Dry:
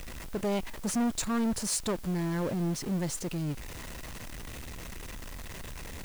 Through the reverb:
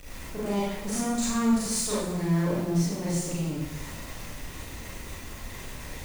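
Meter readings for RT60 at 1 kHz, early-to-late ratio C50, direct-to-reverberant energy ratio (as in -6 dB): 0.90 s, -2.0 dB, -9.0 dB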